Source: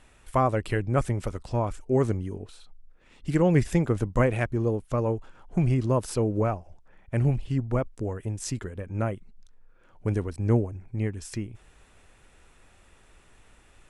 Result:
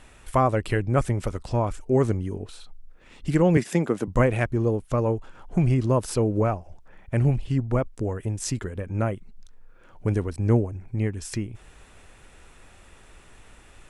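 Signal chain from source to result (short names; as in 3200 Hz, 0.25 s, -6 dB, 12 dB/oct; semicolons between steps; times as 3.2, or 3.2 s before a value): 3.57–4.08 HPF 170 Hz 24 dB/oct; in parallel at -3 dB: compressor, threshold -38 dBFS, peak gain reduction 20 dB; on the sum: gain +1.5 dB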